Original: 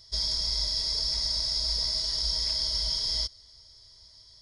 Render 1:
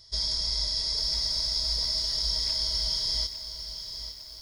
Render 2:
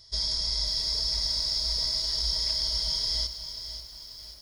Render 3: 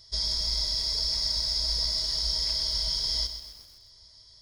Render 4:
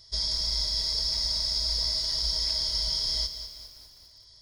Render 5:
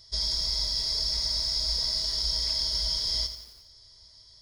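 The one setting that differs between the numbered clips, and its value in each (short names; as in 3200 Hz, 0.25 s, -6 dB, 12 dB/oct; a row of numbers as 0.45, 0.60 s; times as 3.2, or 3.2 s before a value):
lo-fi delay, time: 852, 537, 128, 201, 87 ms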